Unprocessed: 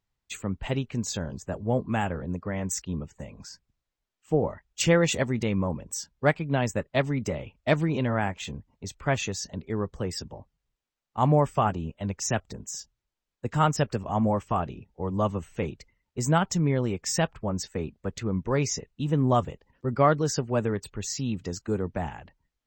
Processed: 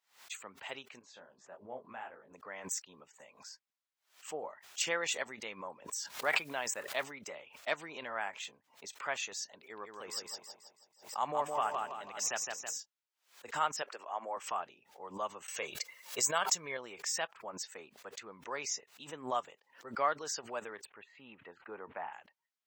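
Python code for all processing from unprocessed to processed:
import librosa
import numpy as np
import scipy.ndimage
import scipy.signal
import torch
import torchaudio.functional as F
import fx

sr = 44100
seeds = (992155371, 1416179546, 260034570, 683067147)

y = fx.chain(x, sr, fx.spacing_loss(db_at_10k=28),
    fx.detune_double(cents=54), at=(0.99, 2.33))
y = fx.chain(y, sr, fx.block_float(bits=7),
    fx.sustainer(db_per_s=47.0), at=(5.92, 7.12))
y = fx.chain(y, sr, fx.high_shelf(hz=8800.0, db=7.0),
    fx.echo_feedback(ms=163, feedback_pct=44, wet_db=-4), at=(9.6, 12.78))
y = fx.chain(y, sr, fx.highpass(hz=300.0, slope=24),
    fx.high_shelf(hz=6500.0, db=-10.0), at=(13.82, 14.37))
y = fx.chain(y, sr, fx.high_shelf(hz=4100.0, db=8.5),
    fx.comb(ms=1.8, depth=0.42),
    fx.env_flatten(amount_pct=50), at=(15.48, 16.77))
y = fx.chain(y, sr, fx.cheby2_lowpass(hz=5100.0, order=4, stop_db=40),
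    fx.dynamic_eq(hz=940.0, q=1.9, threshold_db=-47.0, ratio=4.0, max_db=5), at=(20.85, 22.13))
y = scipy.signal.sosfilt(scipy.signal.butter(2, 840.0, 'highpass', fs=sr, output='sos'), y)
y = fx.pre_swell(y, sr, db_per_s=150.0)
y = y * 10.0 ** (-6.0 / 20.0)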